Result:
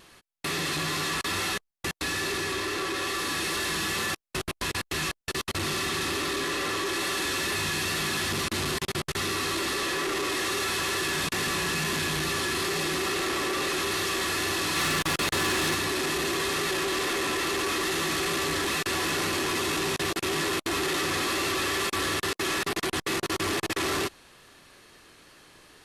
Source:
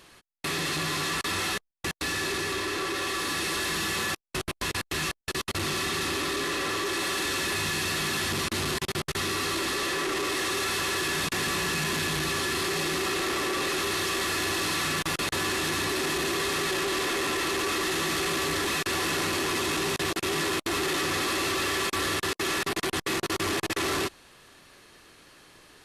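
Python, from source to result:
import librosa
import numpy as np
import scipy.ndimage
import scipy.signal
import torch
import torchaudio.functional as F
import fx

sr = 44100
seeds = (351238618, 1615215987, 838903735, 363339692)

y = fx.vibrato(x, sr, rate_hz=2.3, depth_cents=23.0)
y = fx.leveller(y, sr, passes=1, at=(14.76, 15.75))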